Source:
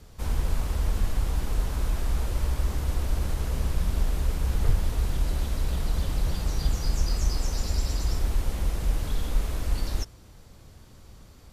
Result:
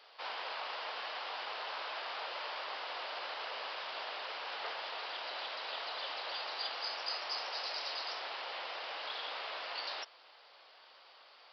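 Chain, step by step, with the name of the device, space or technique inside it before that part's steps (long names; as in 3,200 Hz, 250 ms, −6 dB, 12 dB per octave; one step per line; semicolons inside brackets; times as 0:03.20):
musical greeting card (downsampling to 11,025 Hz; high-pass filter 640 Hz 24 dB per octave; parametric band 2,900 Hz +4 dB 0.37 octaves)
level +2 dB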